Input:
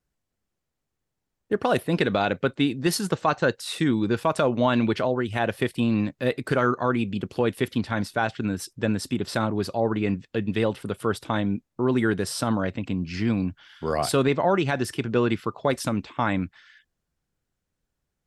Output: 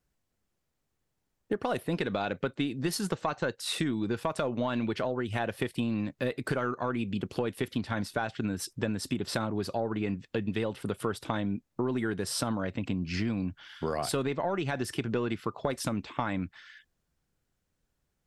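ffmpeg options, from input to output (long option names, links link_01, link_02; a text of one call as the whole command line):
ffmpeg -i in.wav -af "aeval=exprs='0.316*(cos(1*acos(clip(val(0)/0.316,-1,1)))-cos(1*PI/2))+0.0224*(cos(2*acos(clip(val(0)/0.316,-1,1)))-cos(2*PI/2))':channel_layout=same,acompressor=threshold=-29dB:ratio=6,volume=1.5dB" out.wav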